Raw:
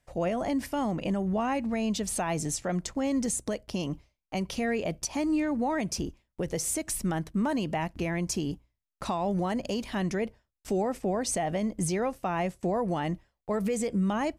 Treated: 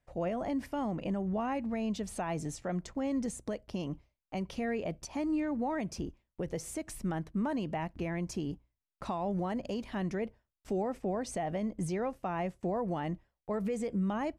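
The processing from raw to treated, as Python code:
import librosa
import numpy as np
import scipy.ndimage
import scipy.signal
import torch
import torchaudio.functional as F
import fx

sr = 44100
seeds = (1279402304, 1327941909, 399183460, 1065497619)

y = fx.high_shelf(x, sr, hz=3600.0, db=-10.5)
y = F.gain(torch.from_numpy(y), -4.5).numpy()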